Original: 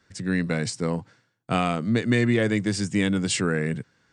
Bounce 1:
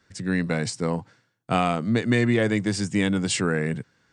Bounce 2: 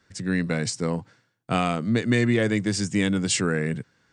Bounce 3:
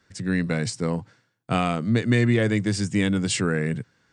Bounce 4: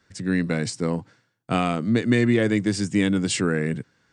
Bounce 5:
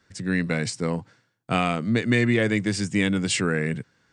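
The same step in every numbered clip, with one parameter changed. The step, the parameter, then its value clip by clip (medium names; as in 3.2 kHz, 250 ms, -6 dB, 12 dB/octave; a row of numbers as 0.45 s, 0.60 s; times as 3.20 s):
dynamic bell, frequency: 830 Hz, 6.3 kHz, 110 Hz, 300 Hz, 2.3 kHz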